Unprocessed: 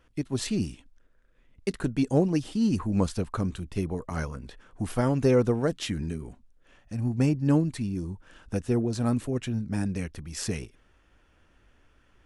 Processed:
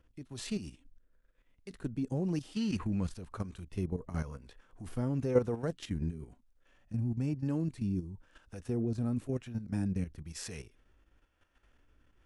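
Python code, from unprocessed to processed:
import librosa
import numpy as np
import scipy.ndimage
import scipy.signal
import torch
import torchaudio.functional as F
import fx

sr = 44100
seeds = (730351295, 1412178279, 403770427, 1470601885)

y = fx.hpss(x, sr, part='percussive', gain_db=-8)
y = fx.harmonic_tremolo(y, sr, hz=1.0, depth_pct=50, crossover_hz=460.0)
y = fx.level_steps(y, sr, step_db=11)
y = fx.peak_eq(y, sr, hz=2200.0, db=11.5, octaves=2.0, at=(2.54, 3.06), fade=0.02)
y = y * librosa.db_to_amplitude(1.5)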